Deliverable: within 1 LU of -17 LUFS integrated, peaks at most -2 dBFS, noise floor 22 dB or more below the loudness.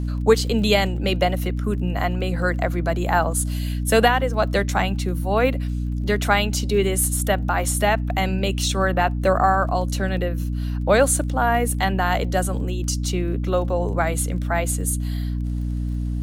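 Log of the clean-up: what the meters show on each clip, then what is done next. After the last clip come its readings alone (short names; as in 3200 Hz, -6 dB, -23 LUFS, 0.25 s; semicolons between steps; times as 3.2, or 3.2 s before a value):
ticks 20/s; hum 60 Hz; harmonics up to 300 Hz; hum level -22 dBFS; loudness -21.5 LUFS; peak -4.0 dBFS; loudness target -17.0 LUFS
-> de-click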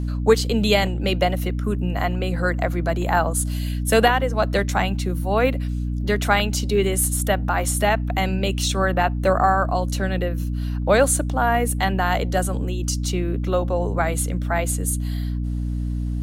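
ticks 0.062/s; hum 60 Hz; harmonics up to 300 Hz; hum level -22 dBFS
-> notches 60/120/180/240/300 Hz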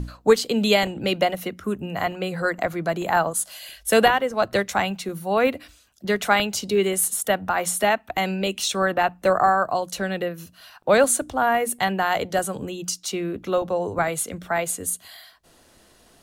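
hum none; loudness -23.0 LUFS; peak -5.5 dBFS; loudness target -17.0 LUFS
-> gain +6 dB; limiter -2 dBFS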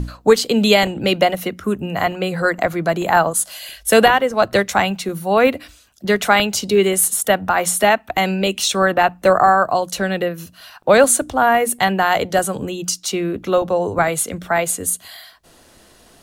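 loudness -17.0 LUFS; peak -2.0 dBFS; noise floor -50 dBFS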